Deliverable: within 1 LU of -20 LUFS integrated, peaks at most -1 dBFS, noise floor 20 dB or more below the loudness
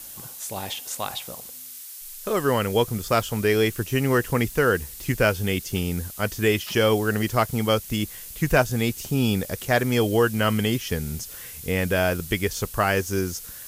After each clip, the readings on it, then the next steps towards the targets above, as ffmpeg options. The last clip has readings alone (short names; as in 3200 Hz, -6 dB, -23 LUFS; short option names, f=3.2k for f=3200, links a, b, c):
noise floor -40 dBFS; noise floor target -44 dBFS; loudness -24.0 LUFS; peak -6.0 dBFS; loudness target -20.0 LUFS
-> -af "afftdn=nr=6:nf=-40"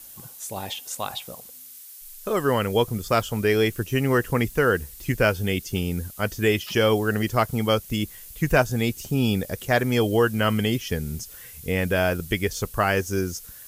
noise floor -44 dBFS; loudness -24.0 LUFS; peak -6.0 dBFS; loudness target -20.0 LUFS
-> -af "volume=4dB"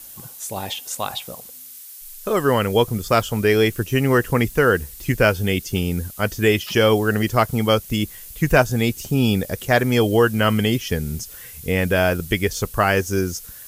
loudness -20.0 LUFS; peak -2.0 dBFS; noise floor -40 dBFS